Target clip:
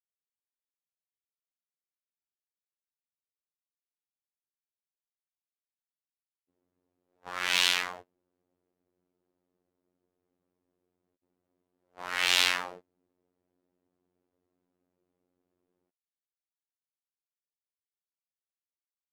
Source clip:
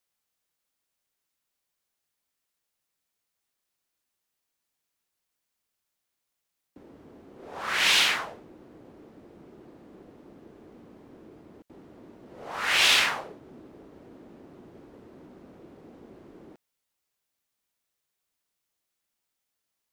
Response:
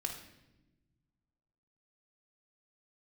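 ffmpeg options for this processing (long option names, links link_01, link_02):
-af "afftfilt=real='hypot(re,im)*cos(PI*b)':imag='0':win_size=2048:overlap=0.75,asetrate=45938,aresample=44100,agate=range=-27dB:threshold=-42dB:ratio=16:detection=peak,volume=-1dB"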